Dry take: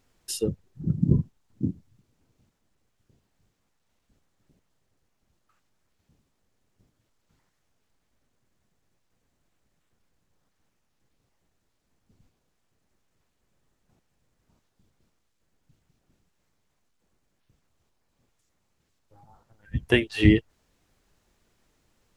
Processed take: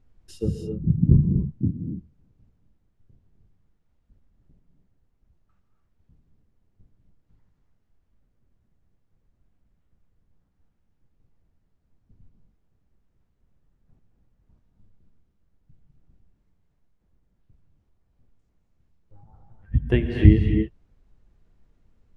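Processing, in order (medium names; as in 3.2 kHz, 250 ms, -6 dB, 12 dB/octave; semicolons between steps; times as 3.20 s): RIAA curve playback; gated-style reverb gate 310 ms rising, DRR 3.5 dB; trim -6 dB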